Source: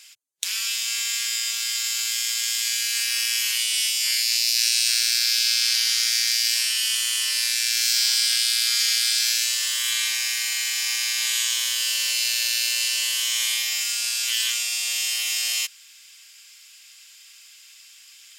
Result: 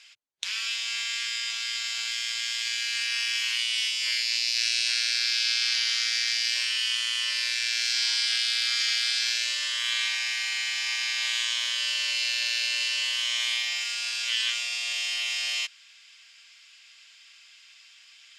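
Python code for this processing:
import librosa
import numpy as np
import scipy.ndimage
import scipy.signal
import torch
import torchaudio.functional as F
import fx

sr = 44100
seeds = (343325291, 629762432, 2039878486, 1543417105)

y = fx.steep_highpass(x, sr, hz=510.0, slope=96, at=(13.51, 14.12))
y = scipy.signal.sosfilt(scipy.signal.butter(2, 4000.0, 'lowpass', fs=sr, output='sos'), y)
y = fx.peak_eq(y, sr, hz=65.0, db=7.0, octaves=0.46)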